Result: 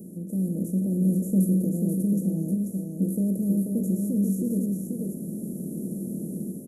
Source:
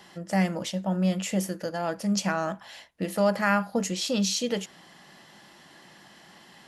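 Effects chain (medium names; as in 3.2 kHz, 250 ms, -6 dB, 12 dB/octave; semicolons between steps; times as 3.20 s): spectral levelling over time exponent 0.4; level rider gain up to 8 dB; inverse Chebyshev band-stop 980–4500 Hz, stop band 60 dB; delay 487 ms -4 dB; trim -5.5 dB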